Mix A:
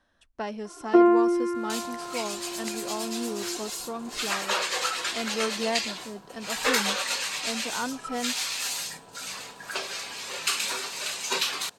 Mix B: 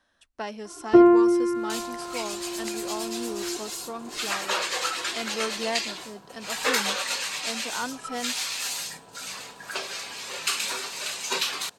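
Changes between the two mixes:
speech: add spectral tilt +1.5 dB per octave
first sound: remove high-pass filter 360 Hz 12 dB per octave

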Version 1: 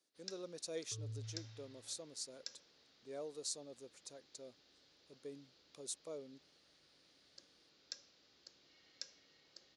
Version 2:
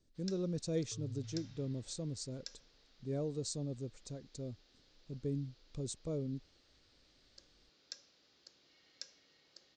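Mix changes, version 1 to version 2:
speech: remove high-pass filter 640 Hz 12 dB per octave
master: add linear-phase brick-wall low-pass 8,800 Hz

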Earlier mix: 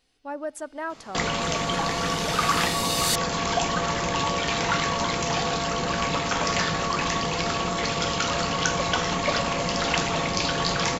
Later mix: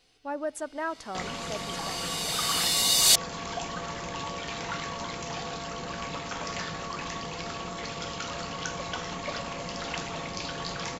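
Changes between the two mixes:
first sound −10.0 dB
second sound +6.0 dB

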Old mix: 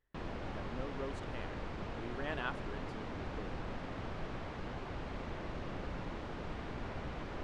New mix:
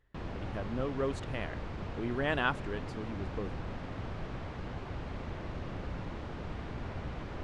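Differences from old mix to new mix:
speech +9.0 dB
master: add parametric band 88 Hz +6 dB 1.9 octaves

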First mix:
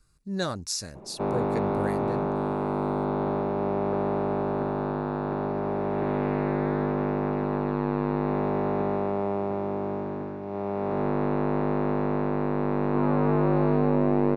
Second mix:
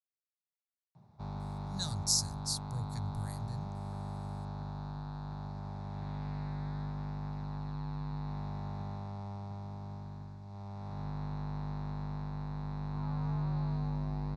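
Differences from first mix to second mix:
speech: entry +1.40 s
master: add drawn EQ curve 120 Hz 0 dB, 350 Hz −29 dB, 520 Hz −28 dB, 830 Hz −14 dB, 1,200 Hz −17 dB, 2,800 Hz −17 dB, 4,100 Hz +1 dB, 8,000 Hz +3 dB

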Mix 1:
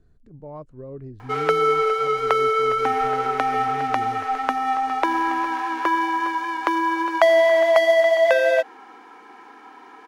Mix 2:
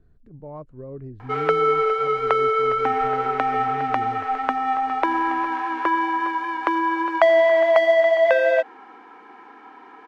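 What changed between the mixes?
background: add high-shelf EQ 8,700 Hz −5 dB
master: add bass and treble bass +1 dB, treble −11 dB

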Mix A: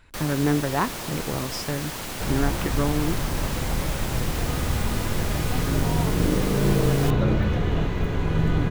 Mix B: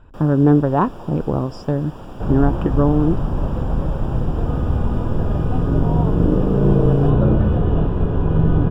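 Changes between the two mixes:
speech +9.5 dB
second sound +6.5 dB
master: add moving average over 21 samples

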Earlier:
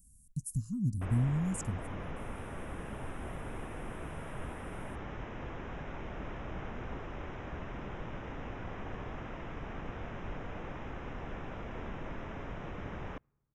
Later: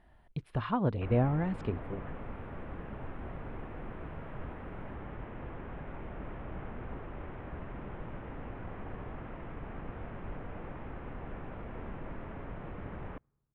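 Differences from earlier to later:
speech: remove inverse Chebyshev band-stop filter 430–3,700 Hz, stop band 40 dB
master: add high-frequency loss of the air 430 metres

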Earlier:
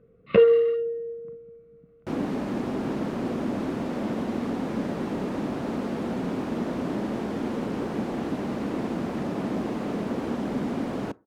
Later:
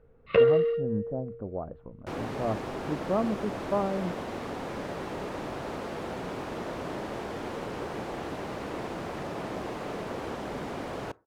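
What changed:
speech: unmuted
master: add parametric band 230 Hz −14 dB 1.1 octaves

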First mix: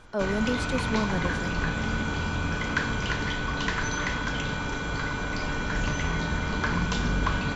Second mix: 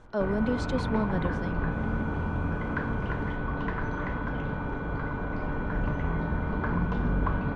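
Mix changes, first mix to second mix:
speech: add high-frequency loss of the air 82 metres
background: add low-pass filter 1,100 Hz 12 dB per octave

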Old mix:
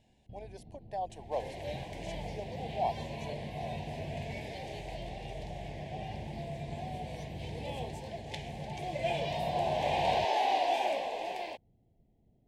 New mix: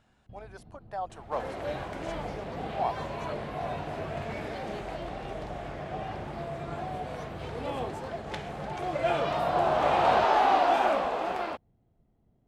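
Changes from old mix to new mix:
second sound: remove high-pass filter 940 Hz 6 dB per octave
master: remove Butterworth band-reject 1,300 Hz, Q 1.1

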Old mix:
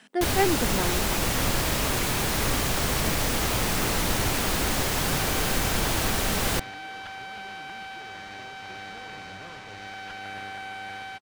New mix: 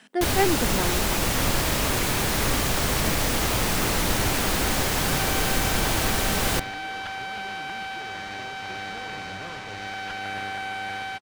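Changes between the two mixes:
second sound +5.5 dB
reverb: on, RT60 1.3 s

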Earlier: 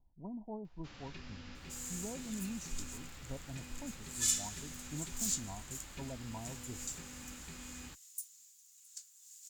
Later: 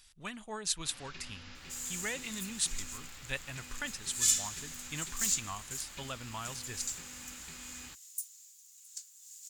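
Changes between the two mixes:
speech: remove Chebyshev low-pass with heavy ripple 1,000 Hz, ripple 6 dB
master: add tilt shelving filter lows −4.5 dB, about 800 Hz

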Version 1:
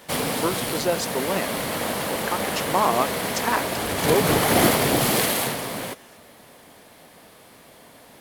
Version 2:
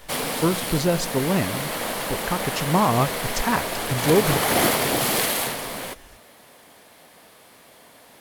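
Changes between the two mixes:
speech: remove high-pass filter 510 Hz 12 dB per octave
master: add low-shelf EQ 400 Hz −6 dB

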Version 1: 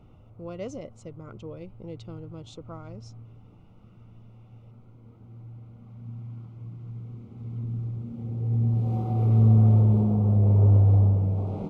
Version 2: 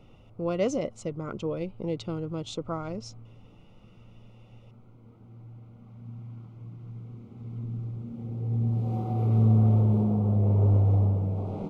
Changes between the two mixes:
speech +9.5 dB
master: add parametric band 66 Hz −5.5 dB 1.8 octaves

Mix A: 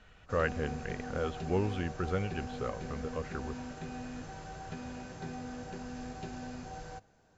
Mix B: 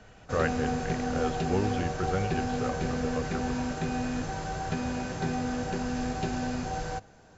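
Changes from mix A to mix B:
background +11.0 dB
reverb: on, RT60 1.9 s

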